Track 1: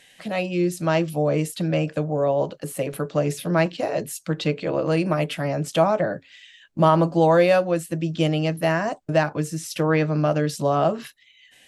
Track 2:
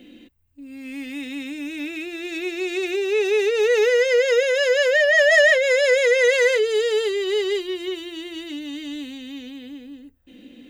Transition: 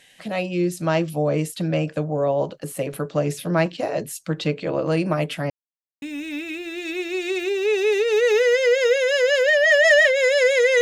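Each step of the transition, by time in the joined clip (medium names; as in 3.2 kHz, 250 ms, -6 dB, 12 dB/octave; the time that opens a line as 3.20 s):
track 1
5.50–6.02 s: mute
6.02 s: go over to track 2 from 1.49 s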